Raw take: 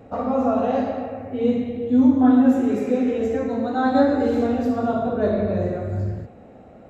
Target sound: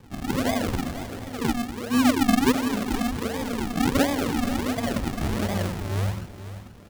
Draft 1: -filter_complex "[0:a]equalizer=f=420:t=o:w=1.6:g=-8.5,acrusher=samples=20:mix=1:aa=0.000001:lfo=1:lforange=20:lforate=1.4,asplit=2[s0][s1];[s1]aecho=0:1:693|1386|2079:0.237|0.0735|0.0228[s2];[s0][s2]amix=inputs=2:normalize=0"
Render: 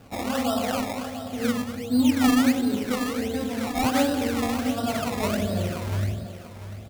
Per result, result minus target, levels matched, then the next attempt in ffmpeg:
echo 209 ms late; decimation with a swept rate: distortion -12 dB
-filter_complex "[0:a]equalizer=f=420:t=o:w=1.6:g=-8.5,acrusher=samples=20:mix=1:aa=0.000001:lfo=1:lforange=20:lforate=1.4,asplit=2[s0][s1];[s1]aecho=0:1:484|968|1452:0.237|0.0735|0.0228[s2];[s0][s2]amix=inputs=2:normalize=0"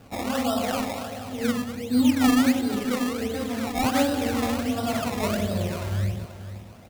decimation with a swept rate: distortion -12 dB
-filter_complex "[0:a]equalizer=f=420:t=o:w=1.6:g=-8.5,acrusher=samples=62:mix=1:aa=0.000001:lfo=1:lforange=62:lforate=1.4,asplit=2[s0][s1];[s1]aecho=0:1:484|968|1452:0.237|0.0735|0.0228[s2];[s0][s2]amix=inputs=2:normalize=0"

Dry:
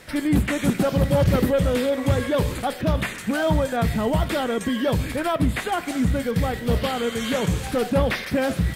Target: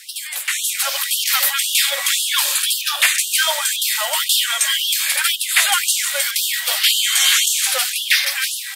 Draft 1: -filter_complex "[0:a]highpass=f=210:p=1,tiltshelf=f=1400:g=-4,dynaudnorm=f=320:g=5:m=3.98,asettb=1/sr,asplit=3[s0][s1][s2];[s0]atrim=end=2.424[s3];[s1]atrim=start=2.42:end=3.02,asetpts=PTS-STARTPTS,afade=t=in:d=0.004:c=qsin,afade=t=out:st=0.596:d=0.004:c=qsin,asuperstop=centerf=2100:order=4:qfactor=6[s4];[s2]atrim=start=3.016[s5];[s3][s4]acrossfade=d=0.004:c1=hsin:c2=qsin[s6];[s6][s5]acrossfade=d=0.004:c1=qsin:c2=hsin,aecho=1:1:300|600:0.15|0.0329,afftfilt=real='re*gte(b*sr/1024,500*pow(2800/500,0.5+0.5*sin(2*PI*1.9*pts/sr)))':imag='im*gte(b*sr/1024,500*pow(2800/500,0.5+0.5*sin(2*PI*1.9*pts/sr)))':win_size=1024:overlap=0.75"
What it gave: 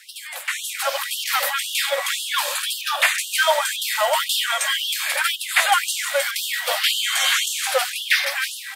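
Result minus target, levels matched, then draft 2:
1 kHz band +8.5 dB
-filter_complex "[0:a]highpass=f=210:p=1,tiltshelf=f=1400:g=-14.5,dynaudnorm=f=320:g=5:m=3.98,asettb=1/sr,asplit=3[s0][s1][s2];[s0]atrim=end=2.424[s3];[s1]atrim=start=2.42:end=3.02,asetpts=PTS-STARTPTS,afade=t=in:d=0.004:c=qsin,afade=t=out:st=0.596:d=0.004:c=qsin,asuperstop=centerf=2100:order=4:qfactor=6[s4];[s2]atrim=start=3.016[s5];[s3][s4]acrossfade=d=0.004:c1=hsin:c2=qsin[s6];[s6][s5]acrossfade=d=0.004:c1=qsin:c2=hsin,aecho=1:1:300|600:0.15|0.0329,afftfilt=real='re*gte(b*sr/1024,500*pow(2800/500,0.5+0.5*sin(2*PI*1.9*pts/sr)))':imag='im*gte(b*sr/1024,500*pow(2800/500,0.5+0.5*sin(2*PI*1.9*pts/sr)))':win_size=1024:overlap=0.75"

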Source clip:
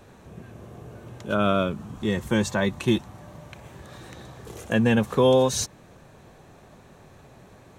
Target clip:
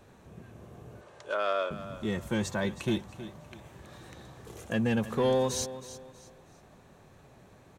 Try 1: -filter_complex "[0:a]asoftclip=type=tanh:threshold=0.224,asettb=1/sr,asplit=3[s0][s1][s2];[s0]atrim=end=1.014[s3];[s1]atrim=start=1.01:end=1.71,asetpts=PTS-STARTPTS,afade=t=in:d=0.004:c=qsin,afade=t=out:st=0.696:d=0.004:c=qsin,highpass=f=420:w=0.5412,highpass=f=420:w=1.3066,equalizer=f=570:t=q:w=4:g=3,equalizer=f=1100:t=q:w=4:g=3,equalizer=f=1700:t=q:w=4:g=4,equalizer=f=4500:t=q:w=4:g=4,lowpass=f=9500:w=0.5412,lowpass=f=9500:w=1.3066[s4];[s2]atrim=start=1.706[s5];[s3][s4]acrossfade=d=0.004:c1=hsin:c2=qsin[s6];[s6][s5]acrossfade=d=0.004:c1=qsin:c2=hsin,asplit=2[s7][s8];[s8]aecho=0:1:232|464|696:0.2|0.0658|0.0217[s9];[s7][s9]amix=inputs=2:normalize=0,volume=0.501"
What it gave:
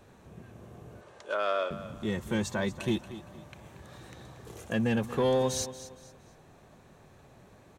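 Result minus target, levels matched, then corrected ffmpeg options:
echo 87 ms early
-filter_complex "[0:a]asoftclip=type=tanh:threshold=0.224,asettb=1/sr,asplit=3[s0][s1][s2];[s0]atrim=end=1.014[s3];[s1]atrim=start=1.01:end=1.71,asetpts=PTS-STARTPTS,afade=t=in:d=0.004:c=qsin,afade=t=out:st=0.696:d=0.004:c=qsin,highpass=f=420:w=0.5412,highpass=f=420:w=1.3066,equalizer=f=570:t=q:w=4:g=3,equalizer=f=1100:t=q:w=4:g=3,equalizer=f=1700:t=q:w=4:g=4,equalizer=f=4500:t=q:w=4:g=4,lowpass=f=9500:w=0.5412,lowpass=f=9500:w=1.3066[s4];[s2]atrim=start=1.706[s5];[s3][s4]acrossfade=d=0.004:c1=hsin:c2=qsin[s6];[s6][s5]acrossfade=d=0.004:c1=qsin:c2=hsin,asplit=2[s7][s8];[s8]aecho=0:1:319|638|957:0.2|0.0658|0.0217[s9];[s7][s9]amix=inputs=2:normalize=0,volume=0.501"

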